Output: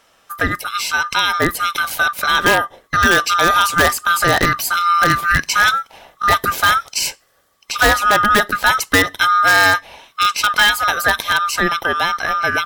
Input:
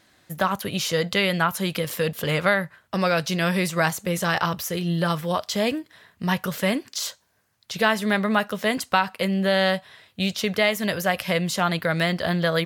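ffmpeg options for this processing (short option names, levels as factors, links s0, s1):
-filter_complex "[0:a]afftfilt=real='real(if(lt(b,960),b+48*(1-2*mod(floor(b/48),2)),b),0)':imag='imag(if(lt(b,960),b+48*(1-2*mod(floor(b/48),2)),b),0)':win_size=2048:overlap=0.75,dynaudnorm=f=300:g=13:m=2.82,asplit=2[s0][s1];[s1]aeval=exprs='(mod(2.51*val(0)+1,2)-1)/2.51':c=same,volume=0.631[s2];[s0][s2]amix=inputs=2:normalize=0"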